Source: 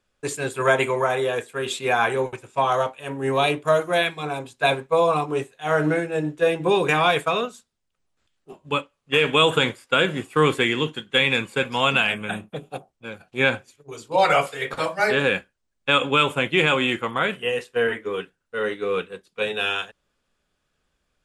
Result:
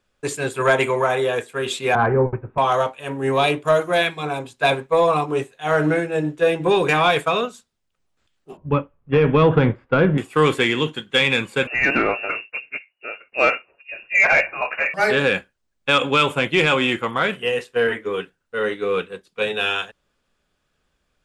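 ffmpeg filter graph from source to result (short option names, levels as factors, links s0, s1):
-filter_complex "[0:a]asettb=1/sr,asplit=3[s0][s1][s2];[s0]atrim=end=1.954[s3];[s1]atrim=start=1.95:end=2.58,asetpts=PTS-STARTPTS,afade=t=in:d=0.004:c=qsin,afade=t=out:st=0.626:d=0.004:c=qsin,lowpass=f=1800:w=0.5412,lowpass=f=1800:w=1.3066,aemphasis=mode=reproduction:type=riaa[s4];[s2]atrim=start=2.576[s5];[s3][s4]acrossfade=d=0.004:c1=hsin:c2=qsin[s6];[s6][s5]acrossfade=d=0.004:c1=qsin:c2=hsin,asettb=1/sr,asplit=3[s7][s8][s9];[s7]atrim=end=8.574[s10];[s8]atrim=start=8.57:end=10.18,asetpts=PTS-STARTPTS,afade=t=in:d=0.004:c=qsin,afade=t=out:st=1.606:d=0.004:c=qsin,lowpass=1900,aemphasis=mode=reproduction:type=riaa[s11];[s9]atrim=start=10.176[s12];[s10][s11]acrossfade=d=0.004:c1=hsin:c2=qsin[s13];[s13][s12]acrossfade=d=0.004:c1=qsin:c2=hsin,asettb=1/sr,asplit=3[s14][s15][s16];[s14]atrim=end=11.674[s17];[s15]atrim=start=11.67:end=14.94,asetpts=PTS-STARTPTS,afade=t=in:d=0.004:c=qsin,afade=t=out:st=3.266:d=0.004:c=qsin,equalizer=f=2300:w=4.2:g=5.5,lowpass=f=2500:t=q:w=0.5098,lowpass=f=2500:t=q:w=0.6013,lowpass=f=2500:t=q:w=0.9,lowpass=f=2500:t=q:w=2.563,afreqshift=-2900[s18];[s16]atrim=start=14.936[s19];[s17][s18]acrossfade=d=0.004:c1=hsin:c2=qsin[s20];[s20][s19]acrossfade=d=0.004:c1=qsin:c2=hsin,equalizer=f=11000:t=o:w=1.5:g=-2.5,acontrast=63,volume=0.668"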